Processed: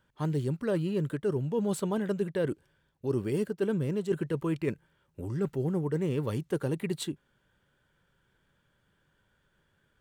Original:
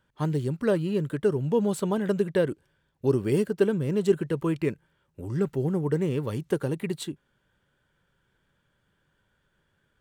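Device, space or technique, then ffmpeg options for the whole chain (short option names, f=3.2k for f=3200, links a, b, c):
compression on the reversed sound: -af "areverse,acompressor=threshold=-26dB:ratio=5,areverse"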